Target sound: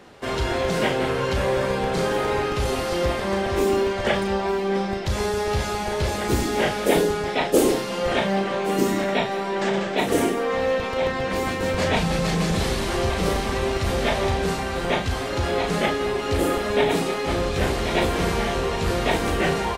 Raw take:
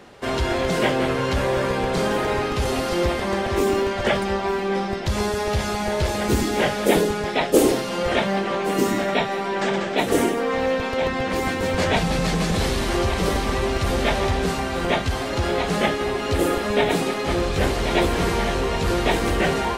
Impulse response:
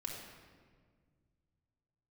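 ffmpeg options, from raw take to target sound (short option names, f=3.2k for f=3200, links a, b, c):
-filter_complex "[0:a]asplit=2[a][b];[b]adelay=36,volume=-7dB[c];[a][c]amix=inputs=2:normalize=0,volume=-2dB"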